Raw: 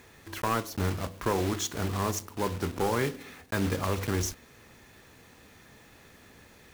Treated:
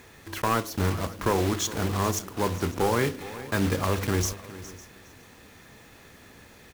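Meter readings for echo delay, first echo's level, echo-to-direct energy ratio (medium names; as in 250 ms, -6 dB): 412 ms, -16.0 dB, -14.5 dB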